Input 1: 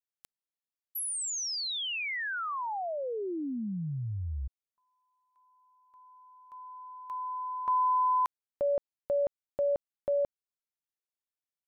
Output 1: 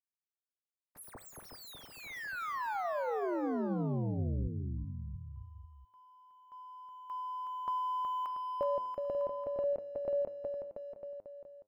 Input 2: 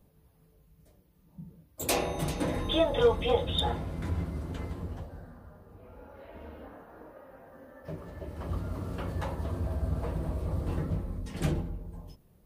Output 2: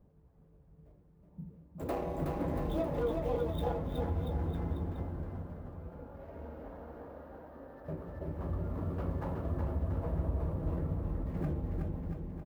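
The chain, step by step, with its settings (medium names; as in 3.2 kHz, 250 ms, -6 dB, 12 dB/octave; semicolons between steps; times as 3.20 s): median filter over 15 samples; peaking EQ 5.9 kHz -13 dB 2.5 oct; de-hum 104.8 Hz, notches 30; compression 4:1, threshold -32 dBFS; on a send: bouncing-ball echo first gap 370 ms, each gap 0.85×, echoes 5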